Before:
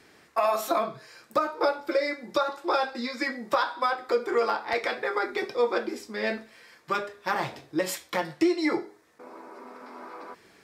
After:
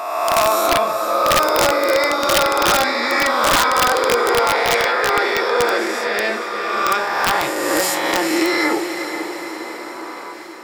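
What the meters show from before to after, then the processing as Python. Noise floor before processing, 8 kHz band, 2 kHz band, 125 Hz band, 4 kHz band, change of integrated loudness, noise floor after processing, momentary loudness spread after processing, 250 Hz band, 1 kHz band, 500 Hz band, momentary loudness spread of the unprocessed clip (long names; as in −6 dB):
−58 dBFS, +20.0 dB, +14.0 dB, +11.5 dB, +17.0 dB, +11.5 dB, −31 dBFS, 12 LU, +7.5 dB, +12.0 dB, +9.5 dB, 18 LU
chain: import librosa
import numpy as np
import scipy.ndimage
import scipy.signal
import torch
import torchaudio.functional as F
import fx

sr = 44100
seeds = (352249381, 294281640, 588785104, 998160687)

p1 = fx.spec_swells(x, sr, rise_s=1.71)
p2 = fx.highpass(p1, sr, hz=560.0, slope=6)
p3 = fx.transient(p2, sr, attack_db=1, sustain_db=5)
p4 = p3 + fx.echo_diffused(p3, sr, ms=458, feedback_pct=61, wet_db=-8.0, dry=0)
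p5 = (np.mod(10.0 ** (14.0 / 20.0) * p4 + 1.0, 2.0) - 1.0) / 10.0 ** (14.0 / 20.0)
y = p5 * librosa.db_to_amplitude(7.0)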